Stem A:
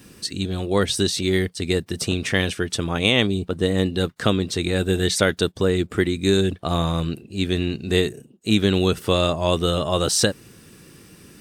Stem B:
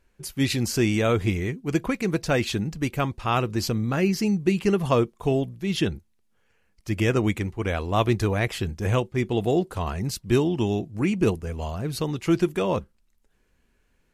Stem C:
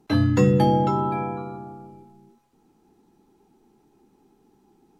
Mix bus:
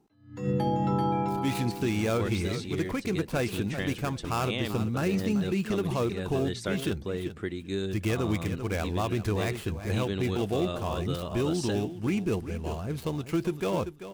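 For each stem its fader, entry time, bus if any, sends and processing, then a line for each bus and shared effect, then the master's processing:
-13.0 dB, 1.45 s, no send, no echo send, LPF 3900 Hz 6 dB/oct
-4.0 dB, 1.05 s, no send, echo send -12.5 dB, switching dead time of 0.084 ms; notch 1900 Hz, Q 23
-7.0 dB, 0.00 s, no send, echo send -3.5 dB, attack slew limiter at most 120 dB/s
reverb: off
echo: feedback echo 0.388 s, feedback 17%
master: limiter -18.5 dBFS, peak gain reduction 7.5 dB

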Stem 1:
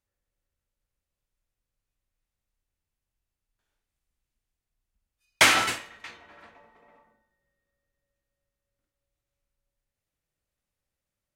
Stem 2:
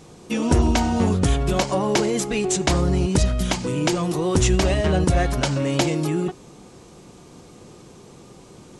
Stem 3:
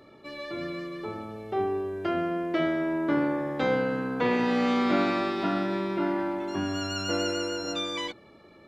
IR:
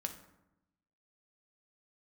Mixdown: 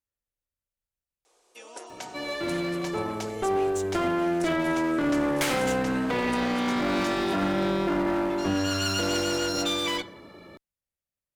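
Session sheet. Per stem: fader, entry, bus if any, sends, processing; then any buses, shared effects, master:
-10.0 dB, 0.00 s, no send, dry
-16.0 dB, 1.25 s, no send, HPF 470 Hz 24 dB/oct
+2.5 dB, 1.90 s, send -4.5 dB, limiter -21.5 dBFS, peak gain reduction 8.5 dB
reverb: on, RT60 0.90 s, pre-delay 3 ms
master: one-sided clip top -27.5 dBFS; high shelf 8200 Hz +7 dB

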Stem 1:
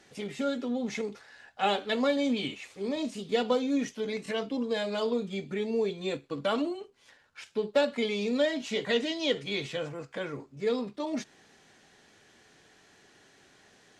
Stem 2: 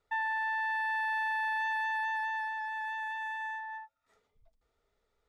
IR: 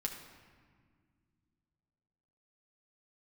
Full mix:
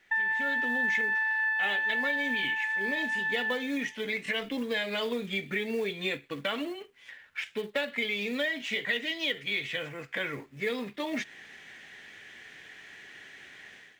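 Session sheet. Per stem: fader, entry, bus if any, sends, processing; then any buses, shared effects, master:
-14.0 dB, 0.00 s, no send, band shelf 2700 Hz +8 dB 1 oct; AGC gain up to 15.5 dB; companded quantiser 6-bit
-3.5 dB, 0.00 s, send -4.5 dB, ending taper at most 120 dB/s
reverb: on, RT60 1.9 s, pre-delay 6 ms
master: bell 1800 Hz +12.5 dB 0.63 oct; compressor 2.5:1, threshold -29 dBFS, peak gain reduction 8.5 dB

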